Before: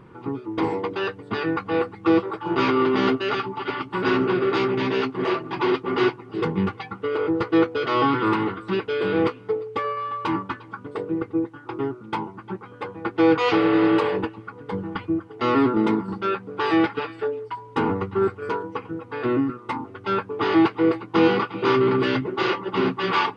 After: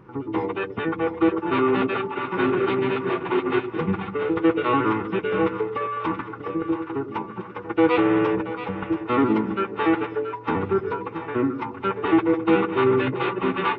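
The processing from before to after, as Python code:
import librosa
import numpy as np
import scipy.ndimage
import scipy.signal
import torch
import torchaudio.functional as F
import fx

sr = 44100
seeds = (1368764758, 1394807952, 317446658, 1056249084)

y = fx.freq_compress(x, sr, knee_hz=2100.0, ratio=1.5)
y = fx.stretch_vocoder(y, sr, factor=0.59)
y = fx.echo_split(y, sr, split_hz=520.0, low_ms=102, high_ms=678, feedback_pct=52, wet_db=-10.0)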